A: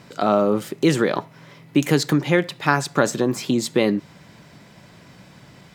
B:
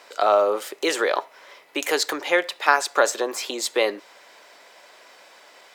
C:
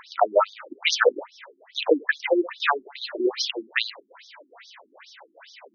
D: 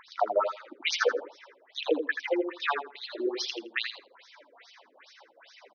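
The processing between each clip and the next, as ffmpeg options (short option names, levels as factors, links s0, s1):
-af "highpass=f=470:w=0.5412,highpass=f=470:w=1.3066,volume=1.26"
-af "alimiter=limit=0.266:level=0:latency=1:release=50,aphaser=in_gain=1:out_gain=1:delay=5:decay=0.47:speed=0.53:type=triangular,afftfilt=real='re*between(b*sr/1024,250*pow(4700/250,0.5+0.5*sin(2*PI*2.4*pts/sr))/1.41,250*pow(4700/250,0.5+0.5*sin(2*PI*2.4*pts/sr))*1.41)':imag='im*between(b*sr/1024,250*pow(4700/250,0.5+0.5*sin(2*PI*2.4*pts/sr))/1.41,250*pow(4700/250,0.5+0.5*sin(2*PI*2.4*pts/sr))*1.41)':win_size=1024:overlap=0.75,volume=2.24"
-af "aecho=1:1:82|164|246:0.447|0.067|0.0101,volume=0.447"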